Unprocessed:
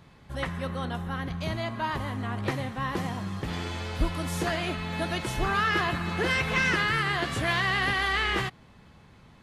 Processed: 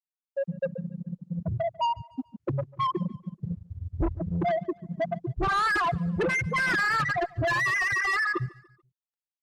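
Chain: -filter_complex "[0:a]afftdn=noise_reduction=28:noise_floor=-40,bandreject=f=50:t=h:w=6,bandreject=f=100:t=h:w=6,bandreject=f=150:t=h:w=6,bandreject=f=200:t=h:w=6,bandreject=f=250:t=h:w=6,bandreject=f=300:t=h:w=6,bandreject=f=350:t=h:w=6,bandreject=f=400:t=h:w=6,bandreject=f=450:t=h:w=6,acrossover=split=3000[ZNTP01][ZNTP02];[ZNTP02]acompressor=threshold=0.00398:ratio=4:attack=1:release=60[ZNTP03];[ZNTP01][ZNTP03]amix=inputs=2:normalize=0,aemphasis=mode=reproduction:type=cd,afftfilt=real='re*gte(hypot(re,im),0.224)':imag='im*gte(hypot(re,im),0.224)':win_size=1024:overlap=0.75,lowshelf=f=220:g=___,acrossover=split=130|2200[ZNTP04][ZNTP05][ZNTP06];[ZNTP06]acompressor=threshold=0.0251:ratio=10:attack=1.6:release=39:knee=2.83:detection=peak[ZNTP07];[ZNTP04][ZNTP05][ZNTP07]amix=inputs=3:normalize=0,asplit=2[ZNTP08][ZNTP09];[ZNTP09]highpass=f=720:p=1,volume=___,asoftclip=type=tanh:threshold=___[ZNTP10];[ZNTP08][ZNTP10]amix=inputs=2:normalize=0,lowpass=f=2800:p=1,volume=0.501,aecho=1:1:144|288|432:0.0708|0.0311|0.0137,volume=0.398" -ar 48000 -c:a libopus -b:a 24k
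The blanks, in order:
8.5, 39.8, 0.355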